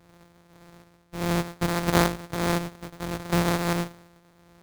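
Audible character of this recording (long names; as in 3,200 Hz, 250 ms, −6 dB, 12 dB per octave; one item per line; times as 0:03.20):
a buzz of ramps at a fixed pitch in blocks of 256 samples
tremolo triangle 1.6 Hz, depth 70%
aliases and images of a low sample rate 2,900 Hz, jitter 20%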